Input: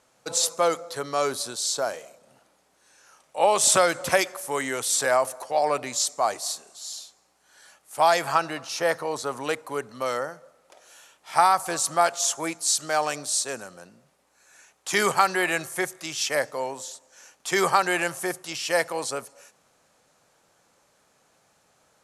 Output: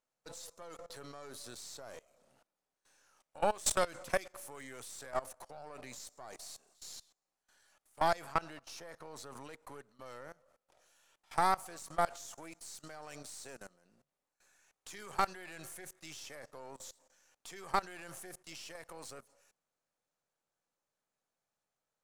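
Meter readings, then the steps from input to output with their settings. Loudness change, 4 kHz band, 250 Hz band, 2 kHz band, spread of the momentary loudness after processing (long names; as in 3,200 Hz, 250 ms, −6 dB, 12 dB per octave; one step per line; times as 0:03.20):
−15.0 dB, −18.0 dB, −15.0 dB, −17.0 dB, 19 LU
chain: gain on one half-wave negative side −7 dB
output level in coarse steps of 21 dB
level −6.5 dB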